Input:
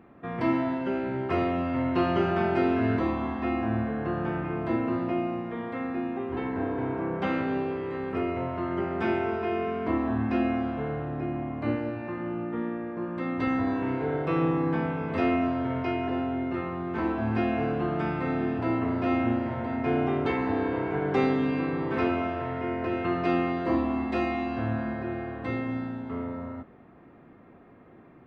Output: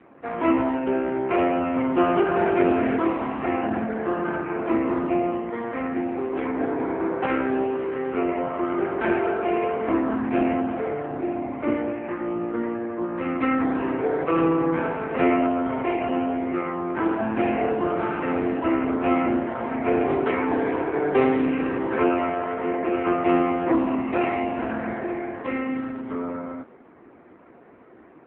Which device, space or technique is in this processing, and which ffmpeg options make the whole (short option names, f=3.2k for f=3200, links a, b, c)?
telephone: -af "highpass=280,lowpass=3.1k,volume=8dB" -ar 8000 -c:a libopencore_amrnb -b:a 5900